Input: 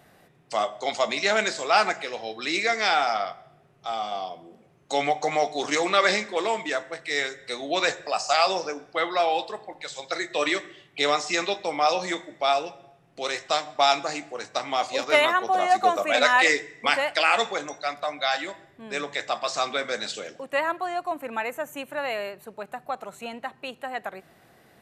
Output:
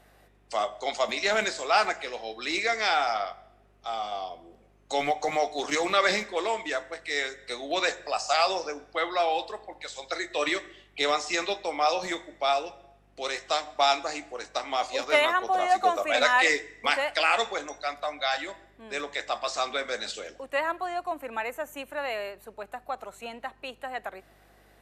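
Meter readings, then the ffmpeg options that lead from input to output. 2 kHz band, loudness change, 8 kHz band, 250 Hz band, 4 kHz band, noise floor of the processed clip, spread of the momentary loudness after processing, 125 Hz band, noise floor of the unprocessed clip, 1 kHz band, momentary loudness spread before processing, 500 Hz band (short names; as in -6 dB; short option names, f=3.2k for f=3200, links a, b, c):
-2.5 dB, -2.5 dB, -2.5 dB, -4.0 dB, -2.5 dB, -60 dBFS, 14 LU, n/a, -58 dBFS, -2.5 dB, 14 LU, -2.5 dB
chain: -filter_complex "[0:a]acrossover=split=200|1100[a][b][c];[a]acrusher=bits=6:mix=0:aa=0.000001[d];[d][b][c]amix=inputs=3:normalize=0,aeval=exprs='val(0)+0.00112*(sin(2*PI*50*n/s)+sin(2*PI*2*50*n/s)/2+sin(2*PI*3*50*n/s)/3+sin(2*PI*4*50*n/s)/4+sin(2*PI*5*50*n/s)/5)':c=same,volume=-2.5dB" -ar 32000 -c:a aac -b:a 96k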